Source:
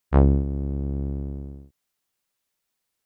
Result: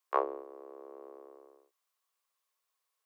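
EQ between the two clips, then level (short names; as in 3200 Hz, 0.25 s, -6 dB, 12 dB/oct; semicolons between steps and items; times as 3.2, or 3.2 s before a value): steep high-pass 400 Hz 48 dB/oct; bell 1100 Hz +14 dB 0.24 oct; -5.0 dB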